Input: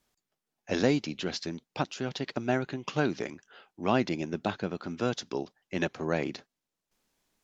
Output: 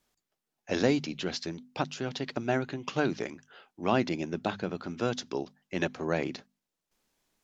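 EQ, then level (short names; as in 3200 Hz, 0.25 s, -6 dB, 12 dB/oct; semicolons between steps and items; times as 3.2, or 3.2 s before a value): notches 50/100/150/200/250 Hz; 0.0 dB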